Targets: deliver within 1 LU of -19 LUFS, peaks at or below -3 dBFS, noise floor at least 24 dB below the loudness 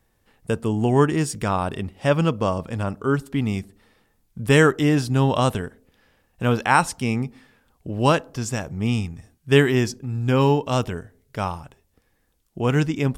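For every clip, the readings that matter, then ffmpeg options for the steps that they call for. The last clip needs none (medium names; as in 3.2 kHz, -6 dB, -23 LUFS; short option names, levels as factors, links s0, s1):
loudness -22.0 LUFS; peak level -2.5 dBFS; loudness target -19.0 LUFS
-> -af "volume=1.41,alimiter=limit=0.708:level=0:latency=1"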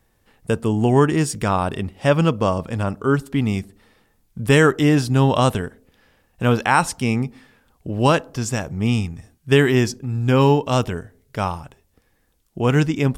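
loudness -19.5 LUFS; peak level -3.0 dBFS; noise floor -64 dBFS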